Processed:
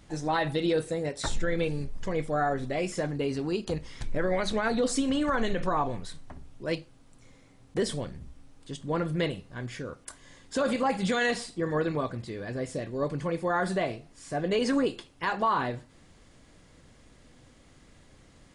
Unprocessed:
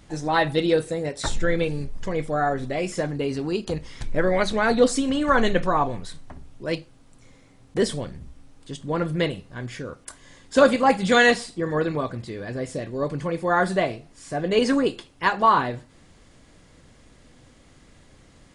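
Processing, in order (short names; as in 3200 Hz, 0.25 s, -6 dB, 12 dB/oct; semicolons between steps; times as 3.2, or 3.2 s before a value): limiter -14.5 dBFS, peak gain reduction 11.5 dB; gain -3.5 dB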